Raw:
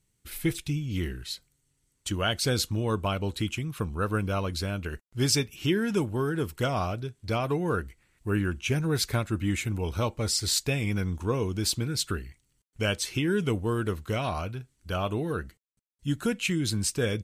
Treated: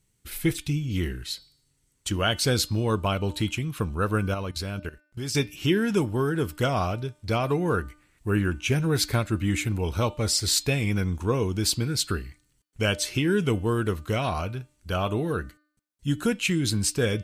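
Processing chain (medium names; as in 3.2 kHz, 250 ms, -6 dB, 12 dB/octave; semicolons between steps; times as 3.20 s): 4.34–5.35 s: level held to a coarse grid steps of 17 dB; de-hum 299.9 Hz, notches 18; trim +3 dB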